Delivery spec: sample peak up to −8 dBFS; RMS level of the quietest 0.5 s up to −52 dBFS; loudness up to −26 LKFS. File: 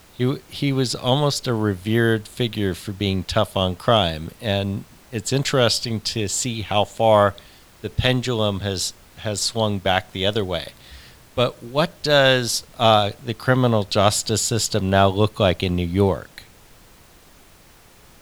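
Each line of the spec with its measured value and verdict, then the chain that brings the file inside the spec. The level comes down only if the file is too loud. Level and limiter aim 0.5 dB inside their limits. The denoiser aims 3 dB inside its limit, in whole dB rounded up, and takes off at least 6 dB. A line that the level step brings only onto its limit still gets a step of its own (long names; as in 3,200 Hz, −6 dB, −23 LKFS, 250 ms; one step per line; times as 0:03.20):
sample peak −1.5 dBFS: out of spec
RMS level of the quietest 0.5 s −50 dBFS: out of spec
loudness −20.5 LKFS: out of spec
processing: level −6 dB
brickwall limiter −8.5 dBFS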